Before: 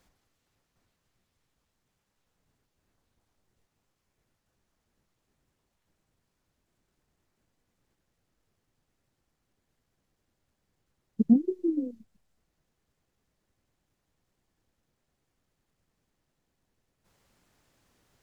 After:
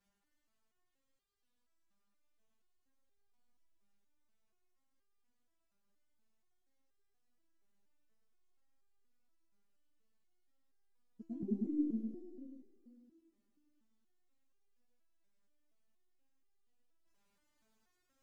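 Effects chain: multi-head delay 104 ms, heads all three, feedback 52%, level -7.5 dB; resonator arpeggio 4.2 Hz 200–400 Hz

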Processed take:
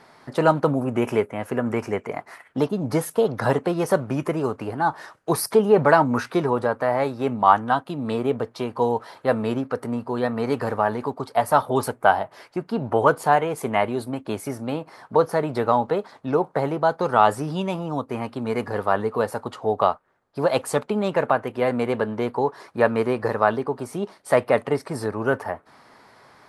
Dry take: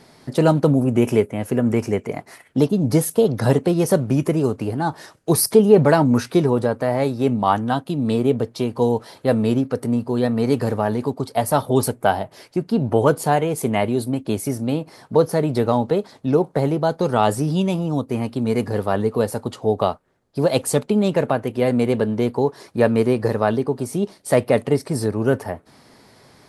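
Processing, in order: peaking EQ 1.2 kHz +14 dB 2.3 oct; trim -9 dB

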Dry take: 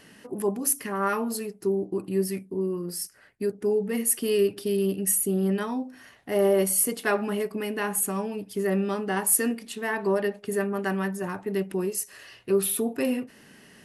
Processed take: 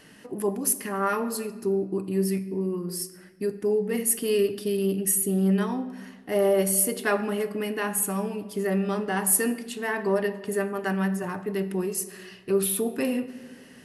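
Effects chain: simulated room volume 1100 m³, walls mixed, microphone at 0.47 m

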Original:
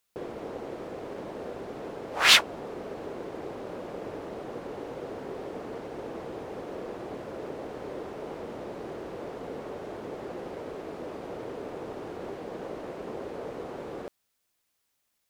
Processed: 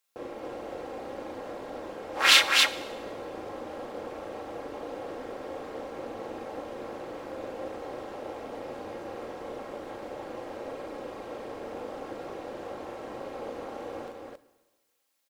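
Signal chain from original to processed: high-pass 330 Hz 12 dB/octave; comb 3.7 ms, depth 48%; AM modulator 230 Hz, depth 55%; loudspeakers at several distances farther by 13 m -3 dB, 94 m -2 dB; plate-style reverb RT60 1.3 s, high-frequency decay 0.95×, DRR 15 dB

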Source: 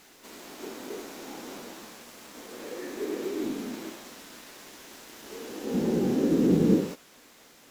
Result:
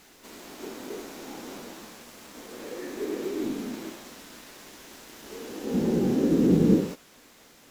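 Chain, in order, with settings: bass shelf 150 Hz +6 dB

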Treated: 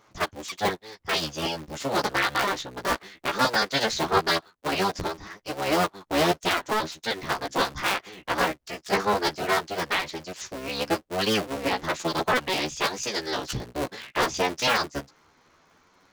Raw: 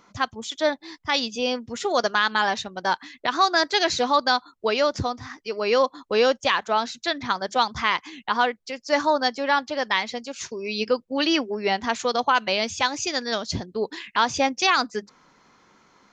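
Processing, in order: cycle switcher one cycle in 3, inverted; flange 0.18 Hz, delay 9.1 ms, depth 7.5 ms, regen -2%; 4.07–4.72 s: three bands expanded up and down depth 70%

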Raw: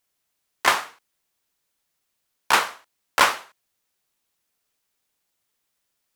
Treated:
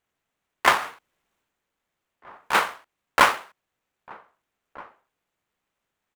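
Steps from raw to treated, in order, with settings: median filter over 9 samples; echo from a far wall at 270 m, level -21 dB; 0.77–2.55 s: transient shaper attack -10 dB, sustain +5 dB; trim +2 dB

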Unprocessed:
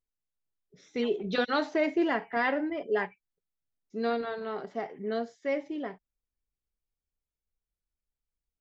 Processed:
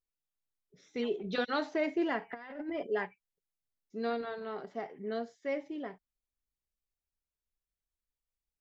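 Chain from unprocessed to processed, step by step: 2.29–2.87 s: compressor with a negative ratio -34 dBFS, ratio -0.5; trim -4.5 dB

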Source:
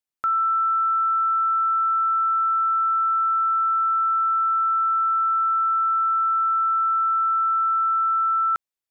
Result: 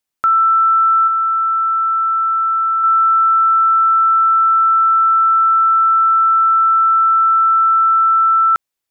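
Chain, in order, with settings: 1.03–2.84 s: doubling 44 ms -9 dB; trim +9 dB

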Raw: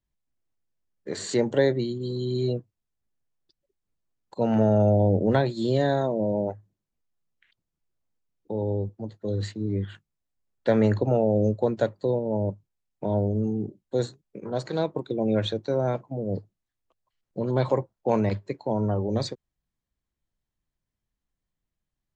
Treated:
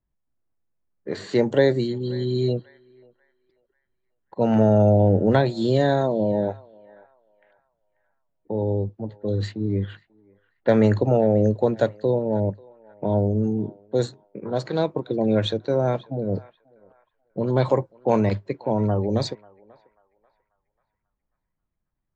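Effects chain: band-passed feedback delay 539 ms, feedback 45%, band-pass 1.8 kHz, level -18.5 dB; level-controlled noise filter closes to 1.5 kHz, open at -19.5 dBFS; trim +3.5 dB

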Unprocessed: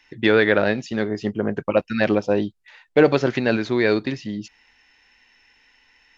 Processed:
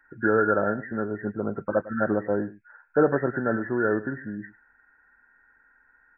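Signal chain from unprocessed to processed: knee-point frequency compression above 1.3 kHz 4:1; delay 103 ms -17.5 dB; trim -5.5 dB

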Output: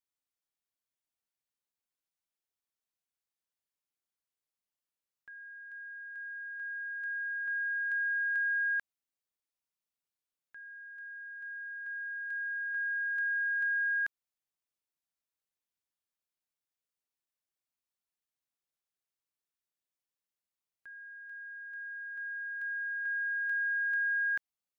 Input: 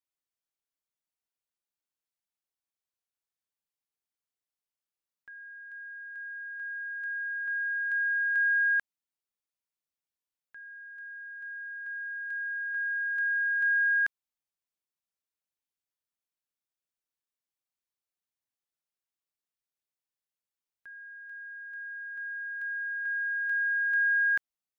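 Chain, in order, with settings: compression, threshold -27 dBFS, peak gain reduction 3.5 dB; trim -2 dB

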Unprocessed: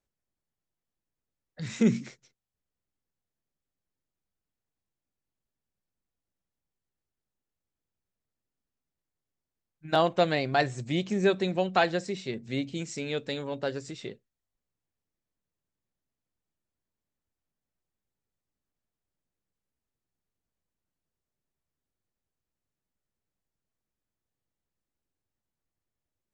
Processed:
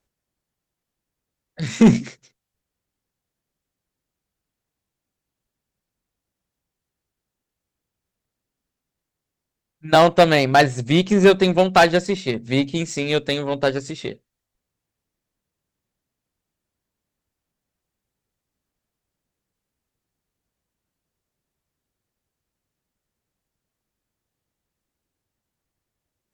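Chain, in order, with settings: sine folder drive 5 dB, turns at -9.5 dBFS; Chebyshev shaper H 3 -24 dB, 6 -29 dB, 7 -29 dB, 8 -37 dB, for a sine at -9 dBFS; trim +4.5 dB

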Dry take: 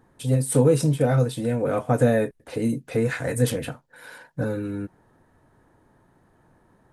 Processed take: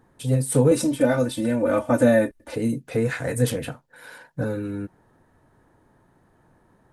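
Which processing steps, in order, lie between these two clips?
0.71–2.55 s: comb 3.4 ms, depth 100%

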